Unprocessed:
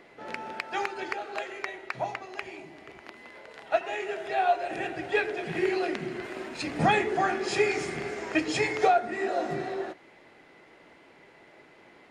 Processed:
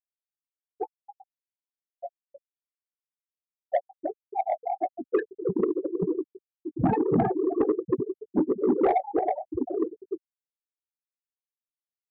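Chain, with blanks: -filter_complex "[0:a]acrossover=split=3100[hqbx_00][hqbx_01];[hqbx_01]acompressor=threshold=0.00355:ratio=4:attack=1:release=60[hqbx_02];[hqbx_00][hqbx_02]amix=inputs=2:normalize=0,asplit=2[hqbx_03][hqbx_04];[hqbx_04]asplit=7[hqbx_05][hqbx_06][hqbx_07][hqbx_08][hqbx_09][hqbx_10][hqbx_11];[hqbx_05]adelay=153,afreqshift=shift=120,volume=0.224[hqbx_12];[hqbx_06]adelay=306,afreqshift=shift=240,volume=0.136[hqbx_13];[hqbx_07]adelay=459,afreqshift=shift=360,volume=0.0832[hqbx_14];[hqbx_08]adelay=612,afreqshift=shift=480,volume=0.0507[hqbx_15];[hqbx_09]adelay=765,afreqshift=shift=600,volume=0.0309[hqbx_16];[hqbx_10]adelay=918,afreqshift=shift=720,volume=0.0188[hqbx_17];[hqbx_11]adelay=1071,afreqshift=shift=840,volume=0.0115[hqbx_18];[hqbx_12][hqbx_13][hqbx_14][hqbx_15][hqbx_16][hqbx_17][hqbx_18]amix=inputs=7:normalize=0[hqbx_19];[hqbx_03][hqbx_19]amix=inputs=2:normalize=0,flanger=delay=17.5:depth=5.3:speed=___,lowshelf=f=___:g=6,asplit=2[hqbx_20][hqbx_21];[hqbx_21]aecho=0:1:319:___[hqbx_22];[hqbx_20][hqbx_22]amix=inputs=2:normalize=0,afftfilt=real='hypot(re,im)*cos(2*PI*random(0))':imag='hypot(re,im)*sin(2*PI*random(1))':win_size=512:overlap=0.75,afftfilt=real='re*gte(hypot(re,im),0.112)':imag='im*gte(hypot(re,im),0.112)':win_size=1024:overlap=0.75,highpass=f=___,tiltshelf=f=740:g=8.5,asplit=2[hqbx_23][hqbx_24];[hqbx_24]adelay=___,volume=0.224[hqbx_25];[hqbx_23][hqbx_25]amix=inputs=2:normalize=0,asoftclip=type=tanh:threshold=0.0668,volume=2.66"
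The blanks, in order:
0.52, 370, 0.631, 66, 16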